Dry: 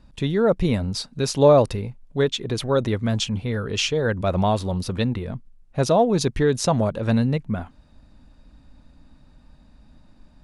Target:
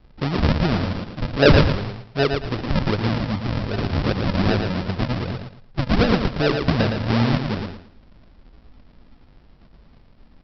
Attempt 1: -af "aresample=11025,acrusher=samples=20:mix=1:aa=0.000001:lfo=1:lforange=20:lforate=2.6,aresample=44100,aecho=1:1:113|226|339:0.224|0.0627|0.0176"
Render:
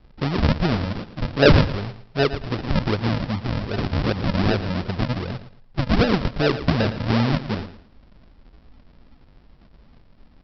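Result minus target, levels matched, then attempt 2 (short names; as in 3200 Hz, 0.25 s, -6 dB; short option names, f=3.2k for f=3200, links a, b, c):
echo-to-direct -7.5 dB
-af "aresample=11025,acrusher=samples=20:mix=1:aa=0.000001:lfo=1:lforange=20:lforate=2.6,aresample=44100,aecho=1:1:113|226|339|452:0.531|0.149|0.0416|0.0117"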